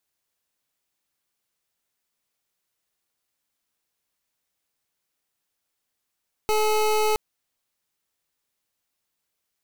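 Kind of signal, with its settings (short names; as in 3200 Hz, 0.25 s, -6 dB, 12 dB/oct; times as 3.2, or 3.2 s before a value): pulse 429 Hz, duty 25% -21 dBFS 0.67 s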